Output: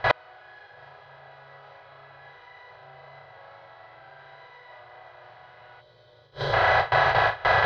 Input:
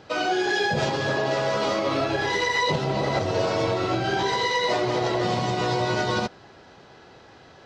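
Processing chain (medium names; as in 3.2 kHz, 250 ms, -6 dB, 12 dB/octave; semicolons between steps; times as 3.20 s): spectral levelling over time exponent 0.4; crossover distortion -41.5 dBFS; bass shelf 260 Hz +4 dB; flutter echo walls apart 6.2 m, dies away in 0.52 s; mains buzz 50 Hz, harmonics 13, -38 dBFS 0 dB/octave; gate with hold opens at -16 dBFS; FFT filter 130 Hz 0 dB, 230 Hz -27 dB, 390 Hz -7 dB, 650 Hz +7 dB, 1.6 kHz +9 dB, 4.4 kHz -2 dB, 7.1 kHz -22 dB; inverted gate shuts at -6 dBFS, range -38 dB; time-frequency box 5.81–6.53 s, 620–3000 Hz -12 dB; trim +1.5 dB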